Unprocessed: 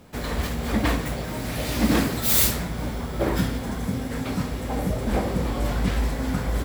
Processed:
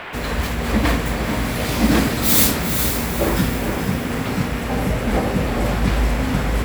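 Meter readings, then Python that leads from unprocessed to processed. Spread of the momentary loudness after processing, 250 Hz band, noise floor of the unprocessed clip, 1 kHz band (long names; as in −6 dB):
8 LU, +5.5 dB, −31 dBFS, +6.5 dB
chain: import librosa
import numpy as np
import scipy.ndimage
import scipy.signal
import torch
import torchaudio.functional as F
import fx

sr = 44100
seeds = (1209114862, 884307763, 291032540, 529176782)

y = fx.echo_diffused(x, sr, ms=456, feedback_pct=43, wet_db=-6)
y = fx.dmg_noise_band(y, sr, seeds[0], low_hz=320.0, high_hz=2600.0, level_db=-37.0)
y = y * librosa.db_to_amplitude(4.0)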